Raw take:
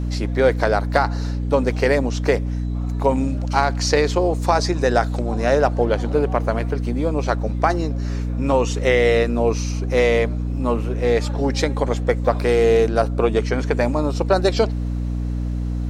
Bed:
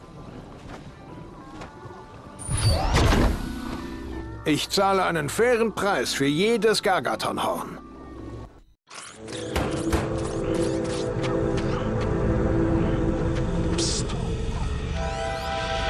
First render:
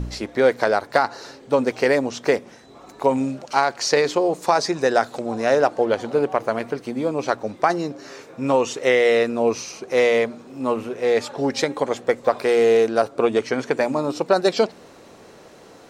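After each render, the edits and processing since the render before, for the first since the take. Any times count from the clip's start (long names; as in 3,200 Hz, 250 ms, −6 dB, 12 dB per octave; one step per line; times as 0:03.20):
hum removal 60 Hz, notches 5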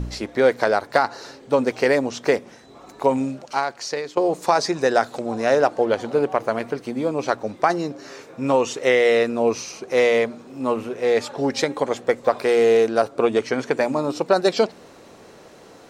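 0:03.09–0:04.17: fade out, to −14 dB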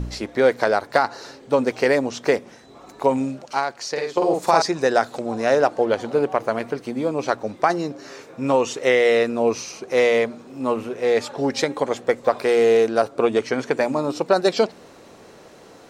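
0:03.91–0:04.62: double-tracking delay 49 ms −2.5 dB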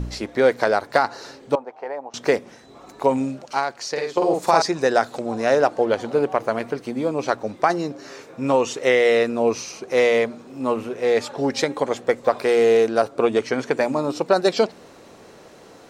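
0:01.55–0:02.14: resonant band-pass 820 Hz, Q 4.1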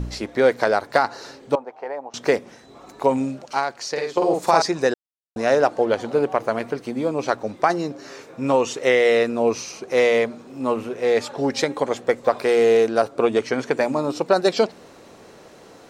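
0:04.94–0:05.36: silence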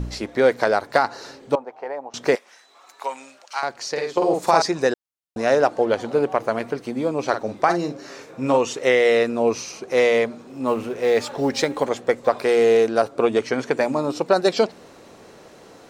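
0:02.35–0:03.63: high-pass filter 1,100 Hz
0:07.29–0:08.58: double-tracking delay 46 ms −8.5 dB
0:10.67–0:11.89: mu-law and A-law mismatch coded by mu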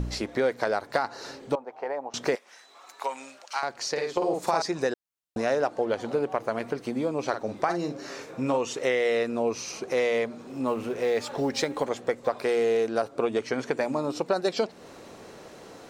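downward compressor 2 to 1, threshold −28 dBFS, peak gain reduction 9.5 dB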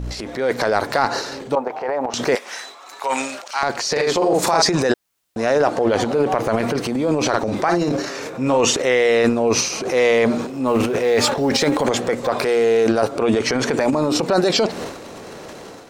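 transient designer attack −4 dB, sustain +11 dB
automatic gain control gain up to 9.5 dB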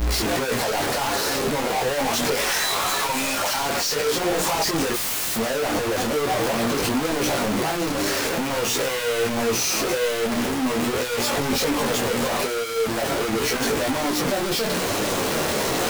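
sign of each sample alone
micro pitch shift up and down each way 15 cents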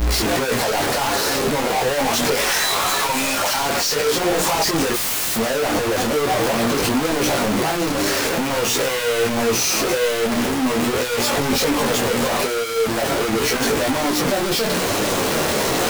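level +3.5 dB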